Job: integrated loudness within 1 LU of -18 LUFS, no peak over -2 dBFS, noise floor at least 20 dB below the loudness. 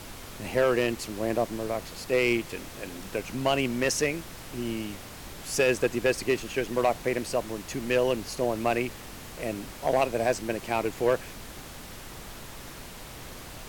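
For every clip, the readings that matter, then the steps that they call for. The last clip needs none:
clipped samples 0.5%; clipping level -15.5 dBFS; noise floor -43 dBFS; noise floor target -49 dBFS; loudness -28.5 LUFS; peak level -15.5 dBFS; loudness target -18.0 LUFS
-> clip repair -15.5 dBFS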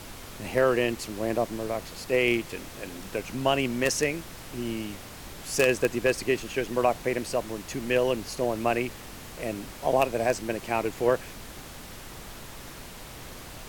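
clipped samples 0.0%; noise floor -43 dBFS; noise floor target -48 dBFS
-> noise print and reduce 6 dB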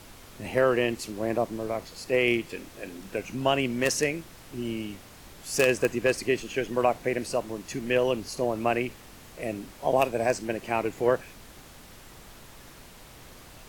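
noise floor -49 dBFS; loudness -27.5 LUFS; peak level -6.5 dBFS; loudness target -18.0 LUFS
-> trim +9.5 dB; peak limiter -2 dBFS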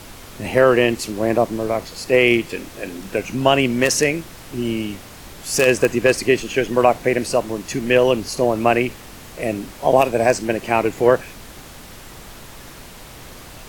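loudness -18.5 LUFS; peak level -2.0 dBFS; noise floor -40 dBFS

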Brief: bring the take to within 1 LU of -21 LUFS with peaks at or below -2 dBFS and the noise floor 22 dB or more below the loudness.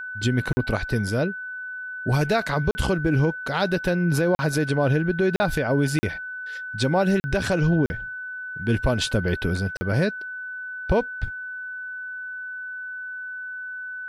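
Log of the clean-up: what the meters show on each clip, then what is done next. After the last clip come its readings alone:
dropouts 8; longest dropout 40 ms; steady tone 1.5 kHz; tone level -31 dBFS; loudness -25.0 LUFS; peak level -11.0 dBFS; loudness target -21.0 LUFS
-> interpolate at 0.53/2.71/4.35/5.36/5.99/7.20/7.86/9.77 s, 40 ms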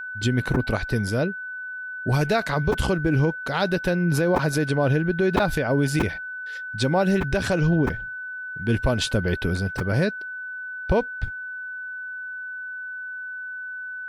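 dropouts 0; steady tone 1.5 kHz; tone level -31 dBFS
-> band-stop 1.5 kHz, Q 30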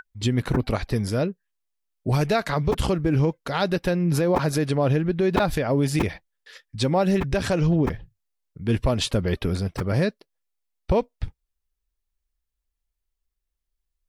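steady tone not found; loudness -24.0 LUFS; peak level -7.0 dBFS; loudness target -21.0 LUFS
-> trim +3 dB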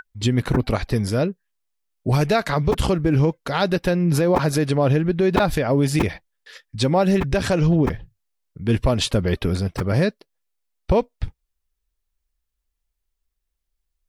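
loudness -21.0 LUFS; peak level -4.0 dBFS; noise floor -78 dBFS

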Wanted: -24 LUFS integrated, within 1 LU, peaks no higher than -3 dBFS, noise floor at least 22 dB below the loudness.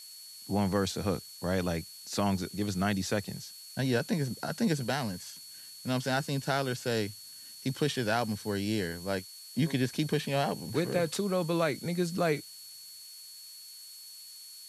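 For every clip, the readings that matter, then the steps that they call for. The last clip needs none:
steady tone 4.4 kHz; tone level -48 dBFS; noise floor -48 dBFS; noise floor target -54 dBFS; loudness -31.5 LUFS; peak level -15.0 dBFS; loudness target -24.0 LUFS
-> band-stop 4.4 kHz, Q 30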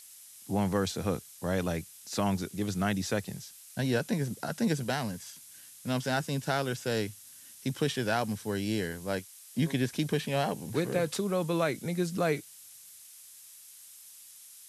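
steady tone not found; noise floor -52 dBFS; noise floor target -54 dBFS
-> noise reduction 6 dB, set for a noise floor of -52 dBFS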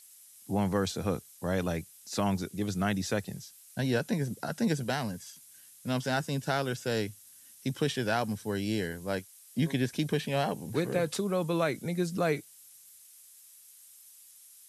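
noise floor -55 dBFS; loudness -32.0 LUFS; peak level -15.0 dBFS; loudness target -24.0 LUFS
-> trim +8 dB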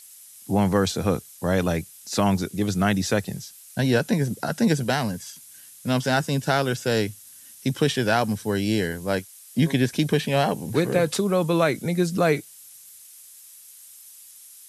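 loudness -24.0 LUFS; peak level -7.0 dBFS; noise floor -47 dBFS

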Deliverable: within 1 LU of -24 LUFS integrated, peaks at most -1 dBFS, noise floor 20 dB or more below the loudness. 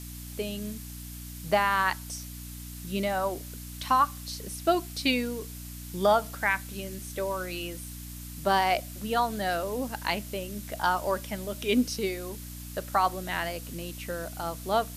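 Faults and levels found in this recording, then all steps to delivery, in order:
hum 60 Hz; highest harmonic 300 Hz; hum level -40 dBFS; noise floor -41 dBFS; noise floor target -50 dBFS; loudness -29.5 LUFS; peak level -11.5 dBFS; loudness target -24.0 LUFS
-> de-hum 60 Hz, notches 5; noise print and reduce 9 dB; trim +5.5 dB

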